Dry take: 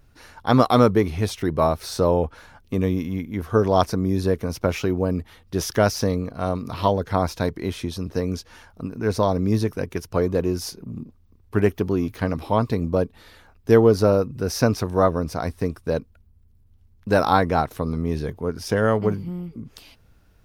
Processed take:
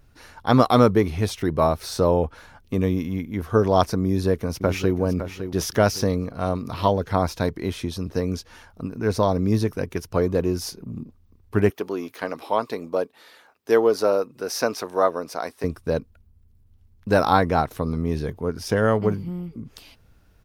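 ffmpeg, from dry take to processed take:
ffmpeg -i in.wav -filter_complex "[0:a]asplit=2[link_01][link_02];[link_02]afade=type=in:start_time=4.04:duration=0.01,afade=type=out:start_time=4.97:duration=0.01,aecho=0:1:560|1120|1680|2240:0.316228|0.11068|0.0387379|0.0135583[link_03];[link_01][link_03]amix=inputs=2:normalize=0,asettb=1/sr,asplit=3[link_04][link_05][link_06];[link_04]atrim=end=11.704[link_07];[link_05]atrim=start=11.7:end=15.64,asetpts=PTS-STARTPTS,afade=type=in:duration=0.004:curve=qsin,afade=type=out:start_time=3.936:duration=0.004:curve=qsin,highpass=410[link_08];[link_06]atrim=start=15.636[link_09];[link_07][link_08]acrossfade=duration=0.004:curve1=hsin:curve2=qsin[link_10];[link_10][link_09]acrossfade=duration=0.004:curve1=qsin:curve2=hsin" out.wav

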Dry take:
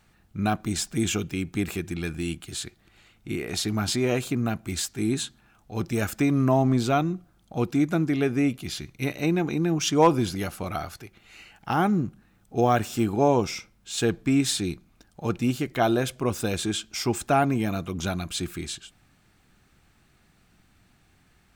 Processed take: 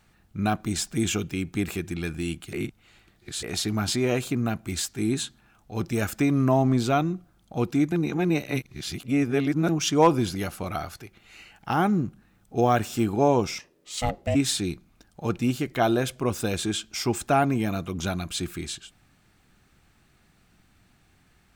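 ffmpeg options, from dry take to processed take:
ffmpeg -i in.wav -filter_complex "[0:a]asplit=3[link_01][link_02][link_03];[link_01]afade=type=out:start_time=13.58:duration=0.02[link_04];[link_02]aeval=exprs='val(0)*sin(2*PI*370*n/s)':channel_layout=same,afade=type=in:start_time=13.58:duration=0.02,afade=type=out:start_time=14.34:duration=0.02[link_05];[link_03]afade=type=in:start_time=14.34:duration=0.02[link_06];[link_04][link_05][link_06]amix=inputs=3:normalize=0,asplit=5[link_07][link_08][link_09][link_10][link_11];[link_07]atrim=end=2.532[link_12];[link_08]atrim=start=2.528:end=3.432,asetpts=PTS-STARTPTS,areverse[link_13];[link_09]atrim=start=3.428:end=7.922[link_14];[link_10]atrim=start=7.918:end=9.692,asetpts=PTS-STARTPTS,areverse[link_15];[link_11]atrim=start=9.688[link_16];[link_12][link_13]acrossfade=duration=0.004:curve1=hsin:curve2=hsin[link_17];[link_17][link_14]acrossfade=duration=0.004:curve1=hsin:curve2=hsin[link_18];[link_18][link_15]acrossfade=duration=0.004:curve1=hsin:curve2=hsin[link_19];[link_19][link_16]acrossfade=duration=0.004:curve1=hsin:curve2=hsin" out.wav

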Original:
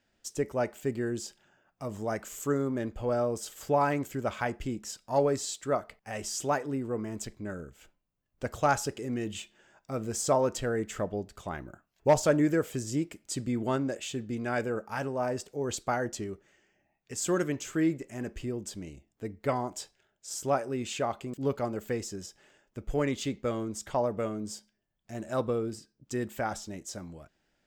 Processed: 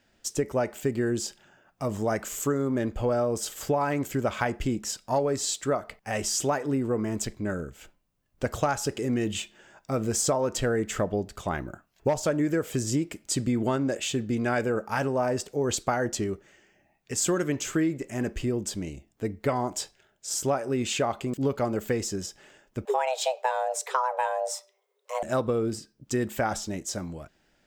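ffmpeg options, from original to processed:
ffmpeg -i in.wav -filter_complex "[0:a]asettb=1/sr,asplit=3[link_01][link_02][link_03];[link_01]atrim=end=22.854[link_04];[link_02]atrim=start=22.85:end=25.23,asetpts=PTS-STARTPTS,afade=type=in:duration=0.004:curve=qsin,afade=type=out:start_time=2.376:duration=0.004:curve=qsin,afreqshift=380[link_05];[link_03]atrim=start=25.226[link_06];[link_04][link_05]acrossfade=duration=0.004:curve1=hsin:curve2=qsin[link_07];[link_07][link_06]acrossfade=duration=0.004:curve1=qsin:curve2=hsin,acompressor=threshold=-29dB:ratio=10,volume=7.5dB" out.wav

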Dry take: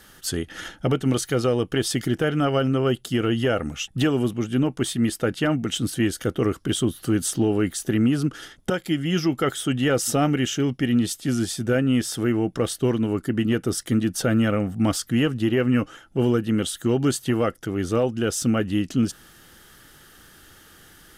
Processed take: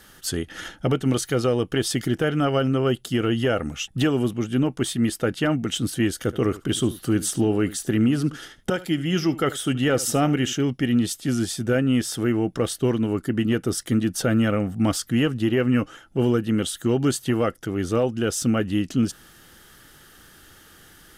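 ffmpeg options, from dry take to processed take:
ffmpeg -i in.wav -filter_complex "[0:a]asettb=1/sr,asplit=3[link_01][link_02][link_03];[link_01]atrim=end=6.154[link_04];[link_02]atrim=start=6.15:end=10.55,asetpts=PTS-STARTPTS,afade=type=in:duration=0.004:curve=qsin,afade=type=out:start_time=4.396:duration=0.004:curve=qsin,aecho=1:1:74:0.133,atrim=end_sample=194040[link_05];[link_03]atrim=start=10.546[link_06];[link_04][link_05]acrossfade=duration=0.004:curve1=hsin:curve2=qsin[link_07];[link_07][link_06]acrossfade=duration=0.004:curve1=qsin:curve2=hsin" out.wav

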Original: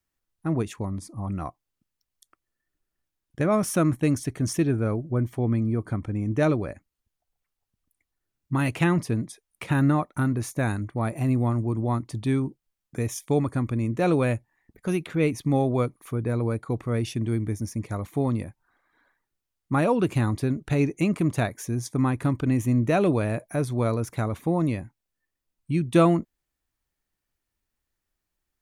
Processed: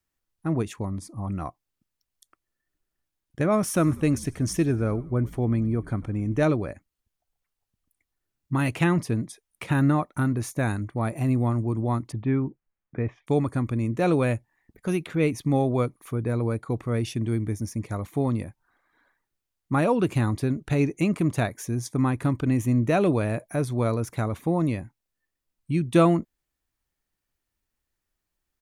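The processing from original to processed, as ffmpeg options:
ffmpeg -i in.wav -filter_complex "[0:a]asplit=3[link_01][link_02][link_03];[link_01]afade=type=out:start_time=3.74:duration=0.02[link_04];[link_02]asplit=5[link_05][link_06][link_07][link_08][link_09];[link_06]adelay=97,afreqshift=-70,volume=-20.5dB[link_10];[link_07]adelay=194,afreqshift=-140,volume=-26.9dB[link_11];[link_08]adelay=291,afreqshift=-210,volume=-33.3dB[link_12];[link_09]adelay=388,afreqshift=-280,volume=-39.6dB[link_13];[link_05][link_10][link_11][link_12][link_13]amix=inputs=5:normalize=0,afade=type=in:start_time=3.74:duration=0.02,afade=type=out:start_time=6.43:duration=0.02[link_14];[link_03]afade=type=in:start_time=6.43:duration=0.02[link_15];[link_04][link_14][link_15]amix=inputs=3:normalize=0,asettb=1/sr,asplit=3[link_16][link_17][link_18];[link_16]atrim=end=12.124[link_19];[link_17]atrim=start=12.12:end=13.27,asetpts=PTS-STARTPTS,afade=type=in:duration=0.004:curve=qsin,afade=type=out:start_time=1.146:duration=0.004:curve=qsin,lowpass=frequency=2300:width=0.5412,lowpass=frequency=2300:width=1.3066[link_20];[link_18]atrim=start=13.266[link_21];[link_19][link_20]acrossfade=duration=0.004:curve1=hsin:curve2=qsin[link_22];[link_22][link_21]acrossfade=duration=0.004:curve1=qsin:curve2=hsin" out.wav

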